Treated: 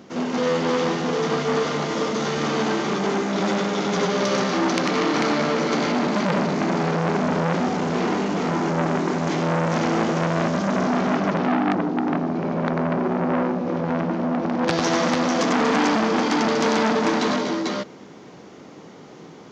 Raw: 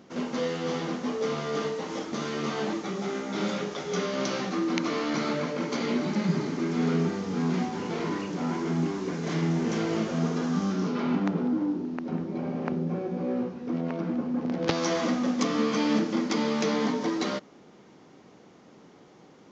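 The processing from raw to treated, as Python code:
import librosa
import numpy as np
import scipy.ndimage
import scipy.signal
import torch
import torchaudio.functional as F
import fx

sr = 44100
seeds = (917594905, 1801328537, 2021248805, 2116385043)

y = scipy.signal.sosfilt(scipy.signal.butter(2, 57.0, 'highpass', fs=sr, output='sos'), x)
y = fx.echo_multitap(y, sr, ms=(94, 96, 176, 241, 443), db=(-18.5, -5.0, -12.0, -9.0, -3.0))
y = fx.transformer_sat(y, sr, knee_hz=2200.0)
y = y * 10.0 ** (7.5 / 20.0)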